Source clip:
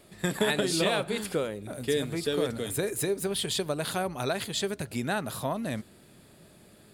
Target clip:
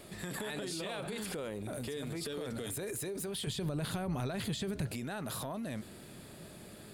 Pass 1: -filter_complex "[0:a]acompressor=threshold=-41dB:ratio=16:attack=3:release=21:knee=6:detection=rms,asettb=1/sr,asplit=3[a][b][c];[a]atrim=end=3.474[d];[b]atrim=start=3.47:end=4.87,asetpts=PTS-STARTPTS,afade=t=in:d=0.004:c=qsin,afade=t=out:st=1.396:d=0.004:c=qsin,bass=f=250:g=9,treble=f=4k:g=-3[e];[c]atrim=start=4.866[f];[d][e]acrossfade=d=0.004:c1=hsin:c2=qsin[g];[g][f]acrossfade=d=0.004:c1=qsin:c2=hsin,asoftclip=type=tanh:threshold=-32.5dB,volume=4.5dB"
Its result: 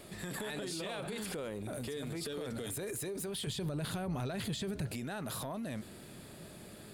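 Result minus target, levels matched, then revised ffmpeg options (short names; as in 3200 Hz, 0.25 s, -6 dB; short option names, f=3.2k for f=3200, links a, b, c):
soft clip: distortion +22 dB
-filter_complex "[0:a]acompressor=threshold=-41dB:ratio=16:attack=3:release=21:knee=6:detection=rms,asettb=1/sr,asplit=3[a][b][c];[a]atrim=end=3.474[d];[b]atrim=start=3.47:end=4.87,asetpts=PTS-STARTPTS,afade=t=in:d=0.004:c=qsin,afade=t=out:st=1.396:d=0.004:c=qsin,bass=f=250:g=9,treble=f=4k:g=-3[e];[c]atrim=start=4.866[f];[d][e]acrossfade=d=0.004:c1=hsin:c2=qsin[g];[g][f]acrossfade=d=0.004:c1=qsin:c2=hsin,asoftclip=type=tanh:threshold=-20.5dB,volume=4.5dB"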